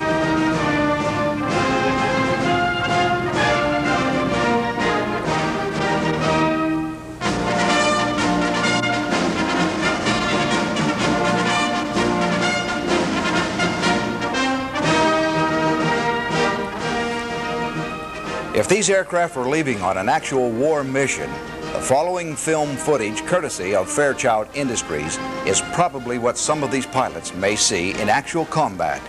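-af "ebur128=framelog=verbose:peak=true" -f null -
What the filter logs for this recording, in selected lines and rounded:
Integrated loudness:
  I:         -19.9 LUFS
  Threshold: -29.9 LUFS
Loudness range:
  LRA:         2.0 LU
  Threshold: -39.9 LUFS
  LRA low:   -21.0 LUFS
  LRA high:  -19.0 LUFS
True peak:
  Peak:       -3.0 dBFS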